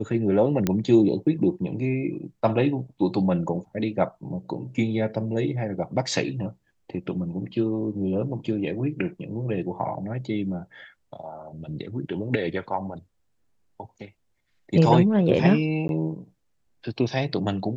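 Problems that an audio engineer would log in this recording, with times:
0.67 pop -9 dBFS
15.88–15.89 gap 11 ms

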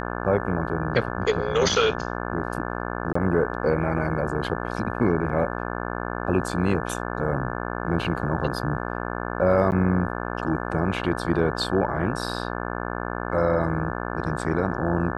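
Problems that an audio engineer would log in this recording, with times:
buzz 60 Hz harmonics 29 -30 dBFS
3.13–3.15 gap 24 ms
9.71–9.72 gap 9.4 ms

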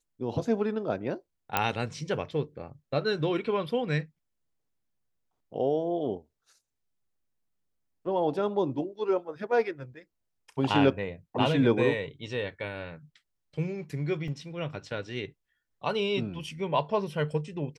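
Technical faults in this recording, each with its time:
1.57 pop -9 dBFS
14.28 gap 2.6 ms

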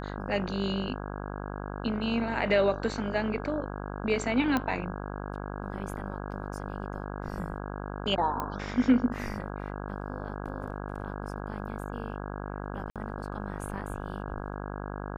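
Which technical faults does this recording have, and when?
buzz 50 Hz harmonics 33 -37 dBFS
4.57 pop -14 dBFS
8.4 pop -18 dBFS
12.9–12.96 gap 57 ms

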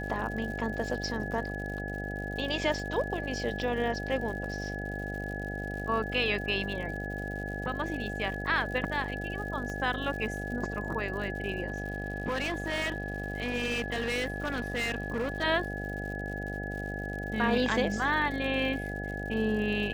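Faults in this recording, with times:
buzz 50 Hz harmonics 16 -37 dBFS
crackle 120/s -39 dBFS
tone 1700 Hz -38 dBFS
9.7 pop -26 dBFS
11.7–15.44 clipped -27 dBFS

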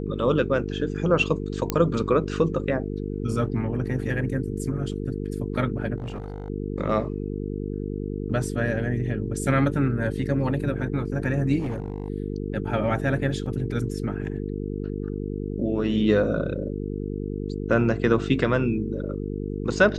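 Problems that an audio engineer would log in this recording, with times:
buzz 50 Hz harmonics 9 -30 dBFS
1.7 pop -8 dBFS
5.98–6.5 clipped -28.5 dBFS
11.59–12.1 clipped -24.5 dBFS
13.46 gap 3.7 ms

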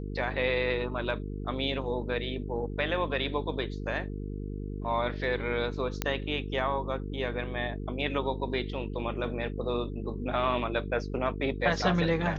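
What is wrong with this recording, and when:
buzz 50 Hz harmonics 9 -36 dBFS
6.02 pop -12 dBFS

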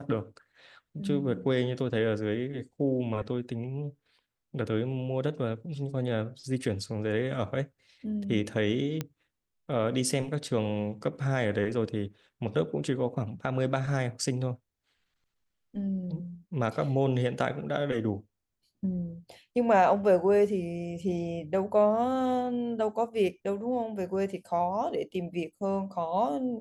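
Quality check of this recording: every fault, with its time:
9.01 pop -17 dBFS

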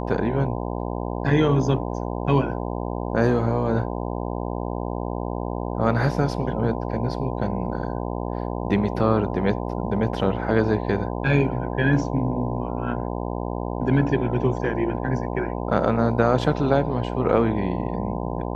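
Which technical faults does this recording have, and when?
buzz 60 Hz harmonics 17 -28 dBFS

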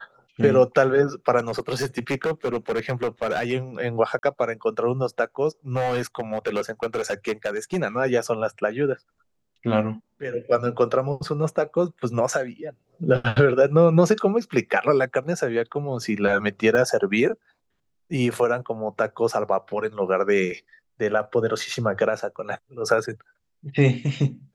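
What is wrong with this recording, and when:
1.38–3.53 clipped -20 dBFS
4.19–4.23 gap 41 ms
5.74–7.77 clipped -20 dBFS
16.75 gap 2.2 ms

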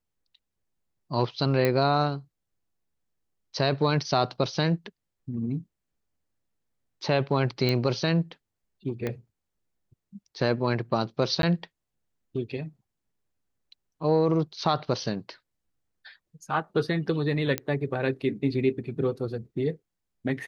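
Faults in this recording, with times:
1.65 pop -11 dBFS
7.69 pop -13 dBFS
9.07 pop -17 dBFS
11.42–11.43 gap 12 ms
17.58 pop -11 dBFS

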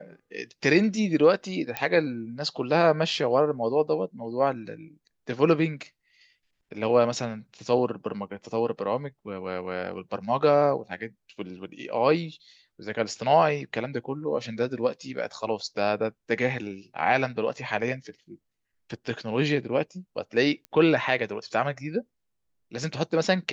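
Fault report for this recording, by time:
1.77 pop -11 dBFS
20.65 pop -25 dBFS

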